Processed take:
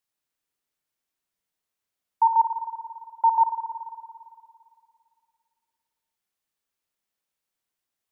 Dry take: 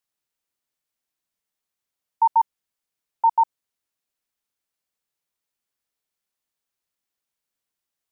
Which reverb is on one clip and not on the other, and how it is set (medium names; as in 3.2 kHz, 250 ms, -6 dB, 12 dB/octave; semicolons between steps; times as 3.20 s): spring tank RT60 2.3 s, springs 56 ms, chirp 55 ms, DRR 4 dB; trim -1 dB